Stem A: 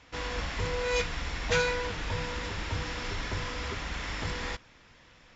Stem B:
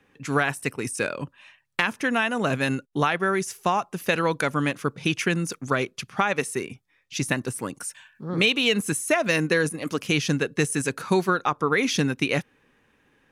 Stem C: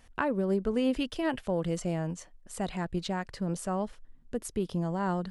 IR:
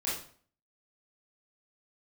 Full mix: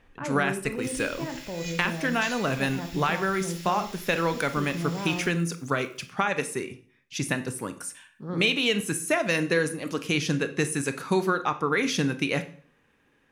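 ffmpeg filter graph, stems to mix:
-filter_complex "[0:a]highpass=1.5k,acrusher=bits=8:mix=0:aa=0.000001,aderivative,adelay=700,volume=-3dB,asplit=2[a][b];[b]volume=-6dB[c];[1:a]volume=-4dB,asplit=2[d][e];[e]volume=-13.5dB[f];[2:a]lowpass=2.9k,alimiter=level_in=1.5dB:limit=-24dB:level=0:latency=1:release=37,volume=-1.5dB,volume=-3.5dB,asplit=2[g][h];[h]volume=-9dB[i];[3:a]atrim=start_sample=2205[j];[c][f][i]amix=inputs=3:normalize=0[k];[k][j]afir=irnorm=-1:irlink=0[l];[a][d][g][l]amix=inputs=4:normalize=0"

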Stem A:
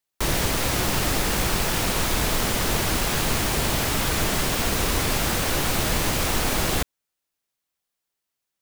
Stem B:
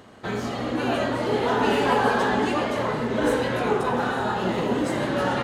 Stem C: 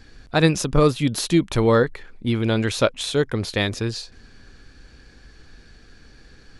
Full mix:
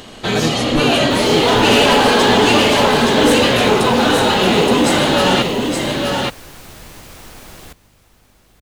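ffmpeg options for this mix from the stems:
-filter_complex "[0:a]aeval=exprs='val(0)+0.00794*(sin(2*PI*50*n/s)+sin(2*PI*2*50*n/s)/2+sin(2*PI*3*50*n/s)/3+sin(2*PI*4*50*n/s)/4+sin(2*PI*5*50*n/s)/5)':c=same,adelay=900,volume=-14.5dB,asplit=2[a][b];[b]volume=-16.5dB[c];[1:a]highshelf=f=2.2k:t=q:w=1.5:g=7.5,aeval=exprs='0.422*sin(PI/2*2.24*val(0)/0.422)':c=same,volume=-0.5dB,asplit=2[d][e];[e]volume=-4dB[f];[2:a]volume=-4dB[g];[c][f]amix=inputs=2:normalize=0,aecho=0:1:871:1[h];[a][d][g][h]amix=inputs=4:normalize=0"

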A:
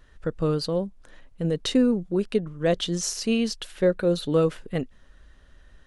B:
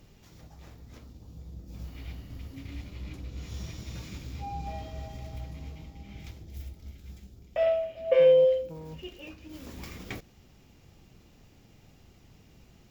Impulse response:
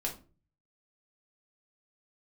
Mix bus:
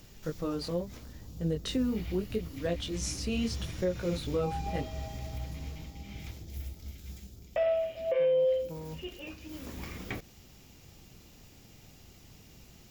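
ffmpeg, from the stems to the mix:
-filter_complex "[0:a]flanger=delay=16.5:depth=7.3:speed=0.77,volume=-4.5dB[a];[1:a]acrossover=split=2700[b][c];[c]acompressor=threshold=-58dB:ratio=4:attack=1:release=60[d];[b][d]amix=inputs=2:normalize=0,highshelf=f=4k:g=10.5,volume=1dB[e];[a][e]amix=inputs=2:normalize=0,alimiter=limit=-21dB:level=0:latency=1:release=201"

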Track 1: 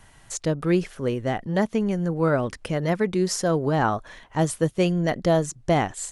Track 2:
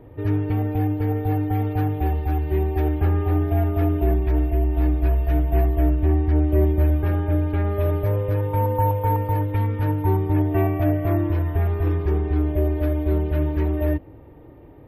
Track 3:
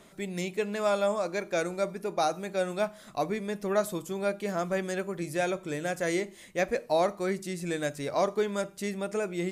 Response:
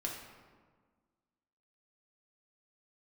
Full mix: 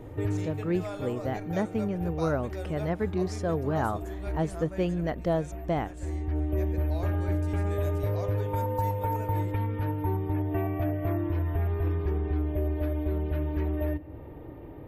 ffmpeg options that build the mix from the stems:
-filter_complex "[0:a]lowpass=f=1.8k:p=1,dynaudnorm=f=230:g=5:m=4.5dB,volume=-10.5dB,asplit=2[a][b];[1:a]acompressor=threshold=-30dB:ratio=3,volume=1dB,asplit=2[c][d];[d]volume=-15dB[e];[2:a]volume=-6.5dB,afade=t=out:st=4.56:d=0.64:silence=0.334965,afade=t=in:st=6.51:d=0.62:silence=0.398107,asplit=2[f][g];[g]volume=-8dB[h];[b]apad=whole_len=655822[i];[c][i]sidechaincompress=threshold=-38dB:ratio=8:attack=16:release=597[j];[3:a]atrim=start_sample=2205[k];[e][h]amix=inputs=2:normalize=0[l];[l][k]afir=irnorm=-1:irlink=0[m];[a][j][f][m]amix=inputs=4:normalize=0"

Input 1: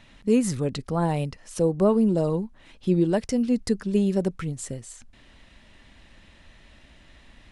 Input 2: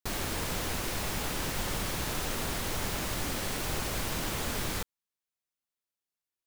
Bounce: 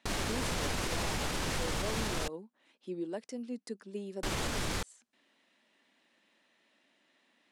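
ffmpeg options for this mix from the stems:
-filter_complex "[0:a]highpass=f=240:w=0.5412,highpass=f=240:w=1.3066,volume=-14.5dB[a];[1:a]lowpass=8.7k,volume=3dB,asplit=3[b][c][d];[b]atrim=end=2.28,asetpts=PTS-STARTPTS,afade=t=out:st=2.276:d=0.004:c=hsin[e];[c]atrim=start=2.28:end=4.23,asetpts=PTS-STARTPTS,volume=0[f];[d]atrim=start=4.23,asetpts=PTS-STARTPTS,afade=t=in:d=0.004:c=hsin[g];[e][f][g]concat=n=3:v=0:a=1[h];[a][h]amix=inputs=2:normalize=0,alimiter=limit=-24dB:level=0:latency=1:release=68"

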